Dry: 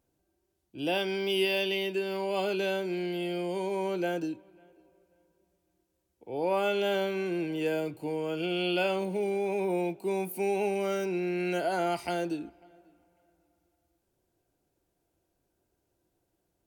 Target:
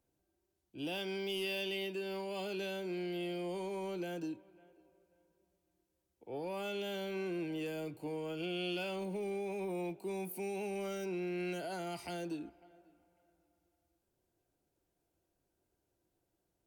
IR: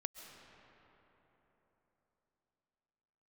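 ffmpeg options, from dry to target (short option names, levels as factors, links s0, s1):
-filter_complex "[0:a]acrossover=split=260|2800[s0][s1][s2];[s1]alimiter=level_in=2:limit=0.0631:level=0:latency=1:release=104,volume=0.501[s3];[s0][s3][s2]amix=inputs=3:normalize=0,asoftclip=type=tanh:threshold=0.0631,volume=0.562"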